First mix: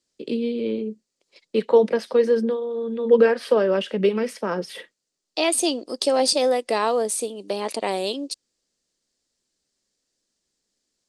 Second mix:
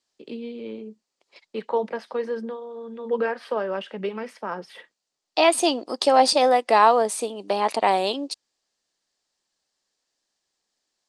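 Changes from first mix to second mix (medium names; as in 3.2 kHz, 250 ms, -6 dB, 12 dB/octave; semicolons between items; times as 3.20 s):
first voice -9.5 dB; master: add FFT filter 520 Hz 0 dB, 800 Hz +10 dB, 10 kHz -5 dB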